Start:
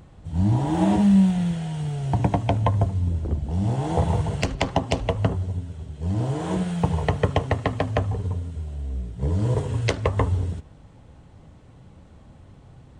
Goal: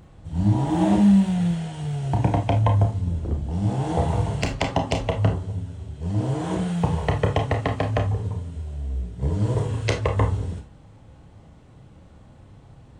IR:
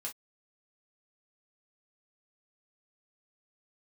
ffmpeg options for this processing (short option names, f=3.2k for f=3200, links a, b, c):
-filter_complex "[0:a]asplit=2[a][b];[1:a]atrim=start_sample=2205,adelay=29[c];[b][c]afir=irnorm=-1:irlink=0,volume=-3dB[d];[a][d]amix=inputs=2:normalize=0,volume=-1dB"